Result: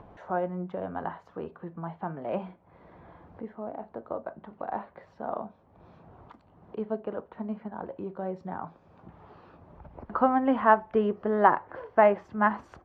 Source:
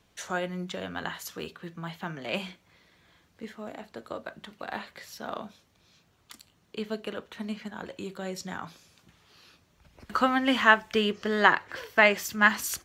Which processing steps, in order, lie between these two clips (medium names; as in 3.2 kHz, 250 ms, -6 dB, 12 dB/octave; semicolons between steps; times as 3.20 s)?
upward compressor, threshold -37 dBFS; resonant low-pass 850 Hz, resonance Q 1.8